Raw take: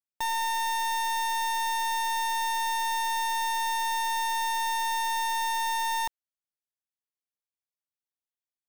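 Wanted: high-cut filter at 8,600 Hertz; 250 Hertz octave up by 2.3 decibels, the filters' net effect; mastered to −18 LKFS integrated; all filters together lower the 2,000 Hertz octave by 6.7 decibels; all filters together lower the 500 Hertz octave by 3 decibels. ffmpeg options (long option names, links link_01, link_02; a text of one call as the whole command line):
ffmpeg -i in.wav -af "lowpass=8600,equalizer=frequency=250:width_type=o:gain=5,equalizer=frequency=500:width_type=o:gain=-5.5,equalizer=frequency=2000:width_type=o:gain=-7.5,volume=12.5dB" out.wav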